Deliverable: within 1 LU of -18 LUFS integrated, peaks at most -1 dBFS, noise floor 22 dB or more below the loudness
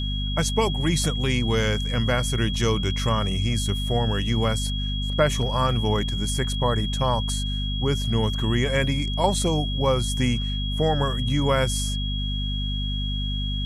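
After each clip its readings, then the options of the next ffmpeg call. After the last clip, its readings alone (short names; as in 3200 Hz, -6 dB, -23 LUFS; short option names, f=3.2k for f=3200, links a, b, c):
hum 50 Hz; harmonics up to 250 Hz; hum level -25 dBFS; steady tone 3300 Hz; tone level -31 dBFS; loudness -24.0 LUFS; peak -7.5 dBFS; loudness target -18.0 LUFS
-> -af "bandreject=f=50:t=h:w=6,bandreject=f=100:t=h:w=6,bandreject=f=150:t=h:w=6,bandreject=f=200:t=h:w=6,bandreject=f=250:t=h:w=6"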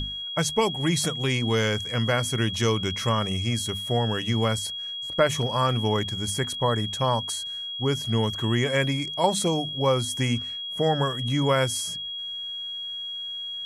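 hum none; steady tone 3300 Hz; tone level -31 dBFS
-> -af "bandreject=f=3.3k:w=30"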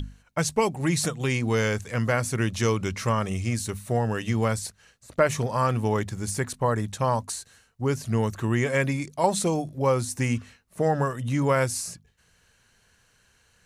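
steady tone none; loudness -26.0 LUFS; peak -7.5 dBFS; loudness target -18.0 LUFS
-> -af "volume=8dB,alimiter=limit=-1dB:level=0:latency=1"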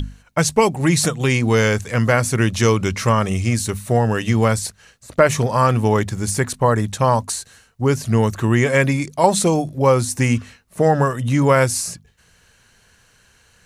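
loudness -18.0 LUFS; peak -1.0 dBFS; noise floor -56 dBFS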